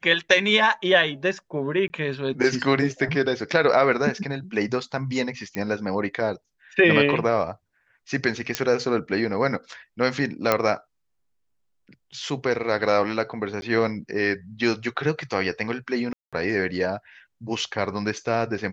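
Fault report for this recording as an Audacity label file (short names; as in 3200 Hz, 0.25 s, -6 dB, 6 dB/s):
1.880000	1.900000	gap 20 ms
5.550000	5.550000	pop -15 dBFS
8.550000	8.550000	pop -5 dBFS
10.520000	10.520000	pop -5 dBFS
13.610000	13.620000	gap 11 ms
16.130000	16.330000	gap 0.196 s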